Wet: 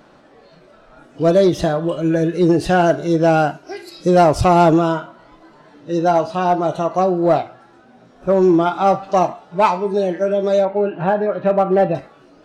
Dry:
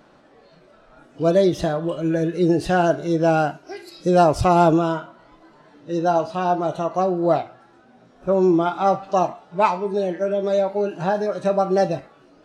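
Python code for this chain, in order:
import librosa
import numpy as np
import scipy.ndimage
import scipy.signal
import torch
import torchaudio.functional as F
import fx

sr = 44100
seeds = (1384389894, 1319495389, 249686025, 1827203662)

p1 = fx.lowpass(x, sr, hz=2900.0, slope=24, at=(10.65, 11.95))
p2 = np.clip(p1, -10.0 ** (-14.0 / 20.0), 10.0 ** (-14.0 / 20.0))
y = p1 + (p2 * 10.0 ** (-4.0 / 20.0))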